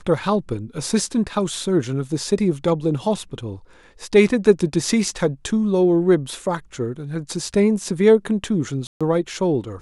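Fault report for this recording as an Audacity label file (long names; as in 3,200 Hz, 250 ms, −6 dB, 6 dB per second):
8.870000	9.010000	drop-out 136 ms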